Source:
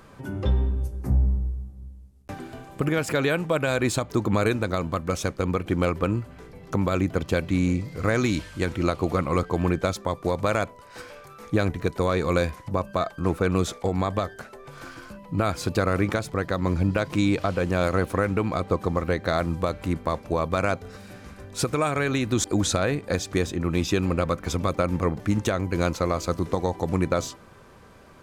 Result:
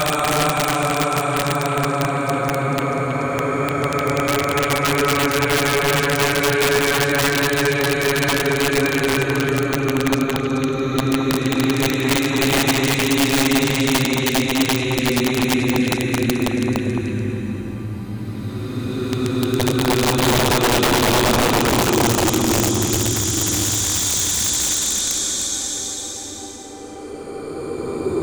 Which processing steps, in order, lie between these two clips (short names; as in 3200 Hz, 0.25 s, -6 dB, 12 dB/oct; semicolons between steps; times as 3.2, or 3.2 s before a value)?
Paulstretch 44×, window 0.10 s, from 21.87; wrapped overs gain 16.5 dB; delay with a stepping band-pass 0.108 s, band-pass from 360 Hz, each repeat 1.4 oct, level -1.5 dB; gain +5 dB